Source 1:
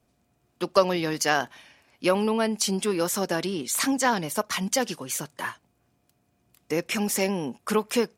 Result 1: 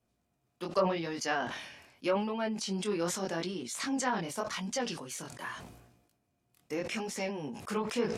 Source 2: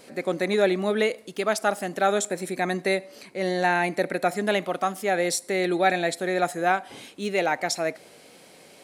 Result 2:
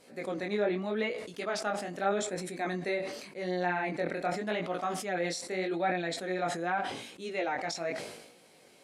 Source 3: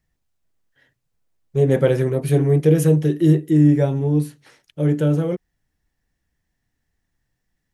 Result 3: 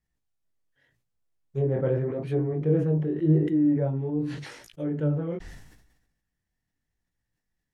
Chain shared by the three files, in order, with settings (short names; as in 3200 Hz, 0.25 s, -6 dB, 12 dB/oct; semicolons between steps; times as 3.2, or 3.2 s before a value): treble ducked by the level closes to 1300 Hz, closed at -14 dBFS; chorus 0.84 Hz, delay 16.5 ms, depth 7.7 ms; sustainer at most 57 dB/s; gain -6 dB